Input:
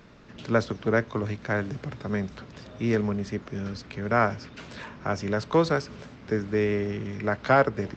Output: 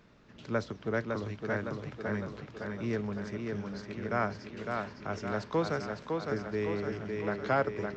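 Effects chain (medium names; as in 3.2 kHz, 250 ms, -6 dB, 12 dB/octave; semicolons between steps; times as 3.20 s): tape echo 559 ms, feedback 62%, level -3 dB, low-pass 5.8 kHz; trim -8.5 dB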